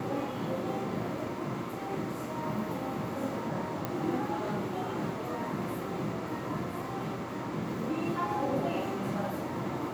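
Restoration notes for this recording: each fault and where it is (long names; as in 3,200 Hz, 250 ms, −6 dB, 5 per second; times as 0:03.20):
0:03.85: click −18 dBFS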